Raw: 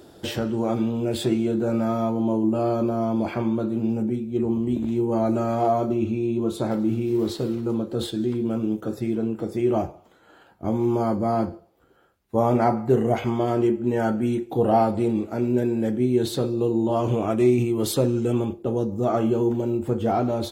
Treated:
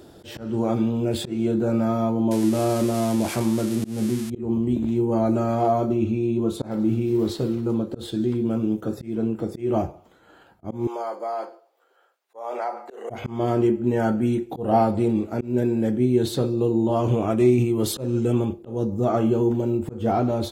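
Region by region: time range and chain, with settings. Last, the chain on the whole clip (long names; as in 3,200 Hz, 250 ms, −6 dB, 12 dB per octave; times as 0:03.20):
0:02.31–0:04.30: spike at every zero crossing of −19.5 dBFS + low-pass filter 12,000 Hz 24 dB per octave
0:10.87–0:13.10: high-pass filter 500 Hz 24 dB per octave + parametric band 12,000 Hz −6.5 dB 0.41 octaves + downward compressor 2.5 to 1, threshold −26 dBFS
whole clip: low-shelf EQ 190 Hz +4 dB; volume swells 188 ms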